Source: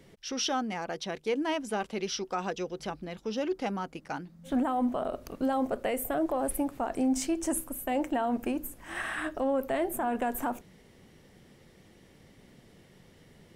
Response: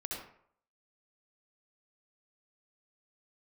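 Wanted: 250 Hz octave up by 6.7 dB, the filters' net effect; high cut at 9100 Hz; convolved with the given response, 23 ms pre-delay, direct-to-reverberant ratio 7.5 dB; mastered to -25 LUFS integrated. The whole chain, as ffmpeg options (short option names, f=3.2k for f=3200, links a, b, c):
-filter_complex "[0:a]lowpass=9.1k,equalizer=f=250:t=o:g=7.5,asplit=2[a][b];[1:a]atrim=start_sample=2205,adelay=23[c];[b][c]afir=irnorm=-1:irlink=0,volume=-8.5dB[d];[a][d]amix=inputs=2:normalize=0,volume=2dB"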